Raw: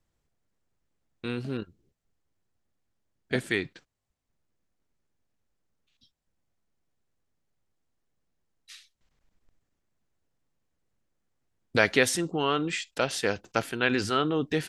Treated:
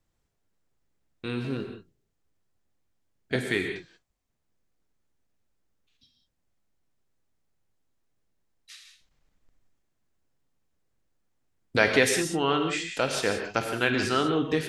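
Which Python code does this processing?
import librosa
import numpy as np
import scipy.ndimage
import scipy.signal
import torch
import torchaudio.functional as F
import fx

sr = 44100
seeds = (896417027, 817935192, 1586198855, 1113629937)

y = fx.rev_gated(x, sr, seeds[0], gate_ms=210, shape='flat', drr_db=4.0)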